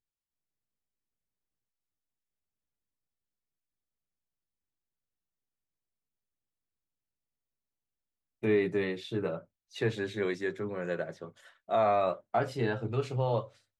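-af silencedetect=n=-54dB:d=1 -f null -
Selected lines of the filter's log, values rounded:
silence_start: 0.00
silence_end: 8.42 | silence_duration: 8.42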